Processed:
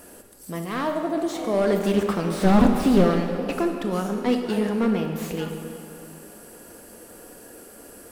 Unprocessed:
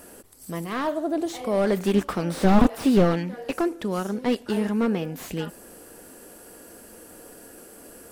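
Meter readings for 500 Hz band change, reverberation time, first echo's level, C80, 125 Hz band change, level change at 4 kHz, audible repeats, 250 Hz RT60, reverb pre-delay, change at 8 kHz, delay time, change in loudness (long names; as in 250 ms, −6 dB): +1.5 dB, 2.9 s, no echo audible, 6.0 dB, +1.0 dB, +1.0 dB, no echo audible, 2.9 s, 23 ms, +1.0 dB, no echo audible, +1.5 dB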